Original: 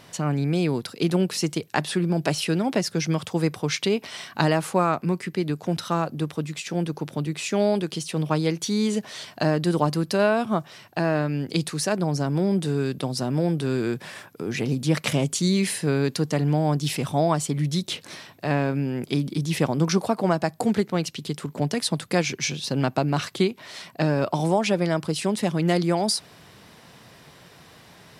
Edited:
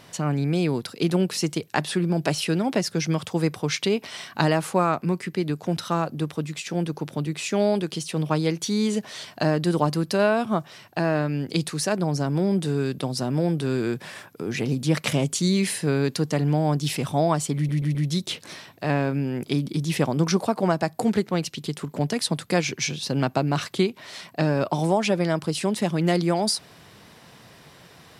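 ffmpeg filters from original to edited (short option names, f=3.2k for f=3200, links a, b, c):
-filter_complex "[0:a]asplit=4[a][b][c][d];[a]atrim=end=17.692[e];[b]atrim=start=17.558:end=17.692[f];[c]atrim=start=17.558:end=17.692[g];[d]atrim=start=17.558[h];[e][f]acrossfade=d=0.004:c1=hsin:c2=hsin[i];[i][g]acrossfade=d=0.004:c1=hsin:c2=hsin[j];[j][h]acrossfade=d=0.004:c1=hsin:c2=hsin"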